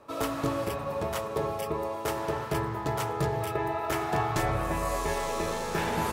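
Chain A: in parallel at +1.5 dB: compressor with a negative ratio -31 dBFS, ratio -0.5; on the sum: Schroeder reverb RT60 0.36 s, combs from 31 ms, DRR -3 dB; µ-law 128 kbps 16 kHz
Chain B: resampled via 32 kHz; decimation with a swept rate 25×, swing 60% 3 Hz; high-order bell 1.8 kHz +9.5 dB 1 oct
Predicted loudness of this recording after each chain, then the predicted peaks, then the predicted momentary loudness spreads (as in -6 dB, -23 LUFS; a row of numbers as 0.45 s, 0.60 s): -20.0 LUFS, -28.0 LUFS; -7.0 dBFS, -12.5 dBFS; 2 LU, 3 LU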